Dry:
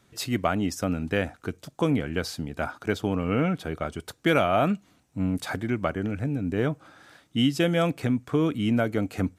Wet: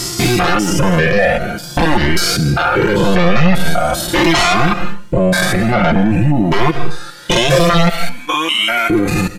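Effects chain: stepped spectrum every 0.2 s; reverb removal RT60 1.9 s; 3.34–4.07 high shelf 8400 Hz +7 dB; 7.89–8.9 HPF 1400 Hz 12 dB/oct; sine folder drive 17 dB, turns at -12 dBFS; comb 5.7 ms, depth 75%; on a send at -15 dB: reverb RT60 0.40 s, pre-delay 0.1 s; on the sum: maximiser +13 dB; cascading flanger rising 0.46 Hz

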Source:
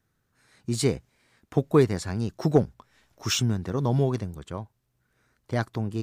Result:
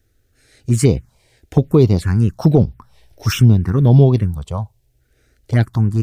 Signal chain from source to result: 2.39–4.48 bell 6900 Hz -12.5 dB 0.24 oct; envelope phaser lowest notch 170 Hz, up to 1700 Hz, full sweep at -19.5 dBFS; low shelf 120 Hz +11.5 dB; maximiser +11 dB; gain -1 dB

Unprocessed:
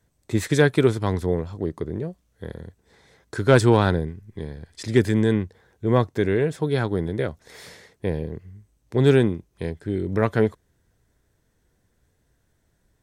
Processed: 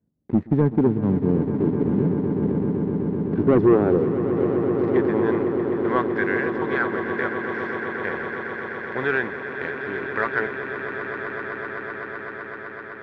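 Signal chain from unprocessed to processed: band-pass sweep 220 Hz -> 1600 Hz, 3.03–6.05; sample leveller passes 2; in parallel at +2.5 dB: compressor, threshold -33 dBFS, peak gain reduction 17.5 dB; on the sum: LPF 2300 Hz 12 dB/oct; swelling echo 0.127 s, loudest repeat 8, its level -12 dB

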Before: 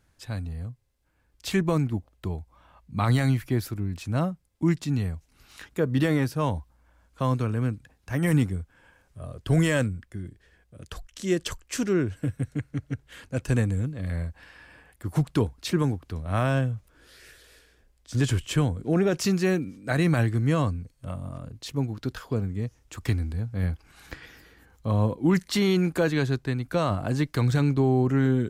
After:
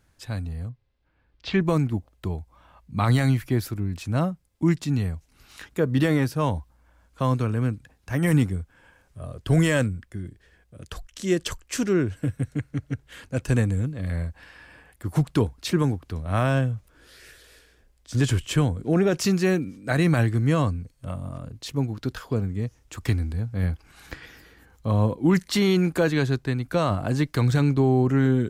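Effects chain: 0.69–1.61 LPF 4300 Hz 24 dB/oct; gain +2 dB

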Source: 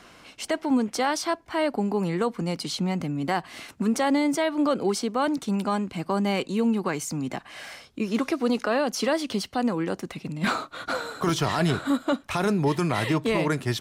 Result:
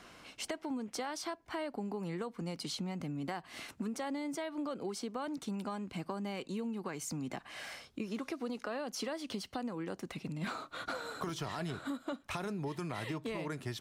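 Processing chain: compressor 6:1, threshold -31 dBFS, peak gain reduction 12 dB; gain -5 dB

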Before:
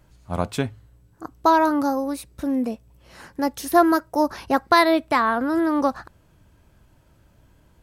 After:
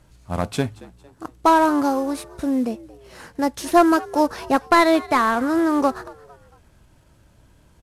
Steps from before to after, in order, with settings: CVSD 64 kbps; frequency-shifting echo 0.227 s, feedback 41%, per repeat +73 Hz, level -21 dB; gain +2 dB

